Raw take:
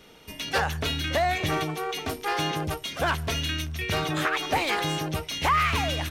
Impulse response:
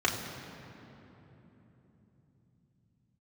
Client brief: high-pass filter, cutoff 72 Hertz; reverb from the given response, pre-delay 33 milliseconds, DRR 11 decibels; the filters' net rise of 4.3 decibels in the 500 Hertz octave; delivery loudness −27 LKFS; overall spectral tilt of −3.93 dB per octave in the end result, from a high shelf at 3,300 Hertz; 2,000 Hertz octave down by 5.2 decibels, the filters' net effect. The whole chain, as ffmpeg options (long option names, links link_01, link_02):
-filter_complex "[0:a]highpass=72,equalizer=frequency=500:width_type=o:gain=6,equalizer=frequency=2000:width_type=o:gain=-9,highshelf=frequency=3300:gain=5.5,asplit=2[link_01][link_02];[1:a]atrim=start_sample=2205,adelay=33[link_03];[link_02][link_03]afir=irnorm=-1:irlink=0,volume=-22.5dB[link_04];[link_01][link_04]amix=inputs=2:normalize=0,volume=-1dB"